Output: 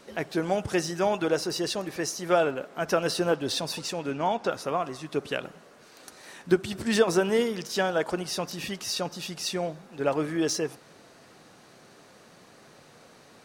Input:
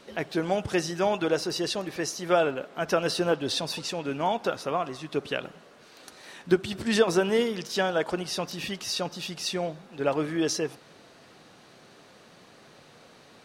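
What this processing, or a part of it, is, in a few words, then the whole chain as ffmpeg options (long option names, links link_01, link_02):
exciter from parts: -filter_complex "[0:a]asettb=1/sr,asplit=3[link_01][link_02][link_03];[link_01]atrim=end=4.114[link_04];[link_02]atrim=start=4.11:end=4.51,asetpts=PTS-STARTPTS,afade=type=in:duration=0.004:curve=qsin,afade=type=out:start_time=0.396:duration=0.004:curve=qsin,lowpass=7100[link_05];[link_03]atrim=start=4.506[link_06];[link_04][link_05]acrossfade=duration=0.004:curve1=hsin:curve2=qsin[link_07];[link_07][link_06]acrossfade=duration=0.004:curve1=qsin:curve2=hsin,asplit=2[link_08][link_09];[link_09]highpass=2200,asoftclip=type=tanh:threshold=-31dB,highpass=3700,volume=-4.5dB[link_10];[link_08][link_10]amix=inputs=2:normalize=0"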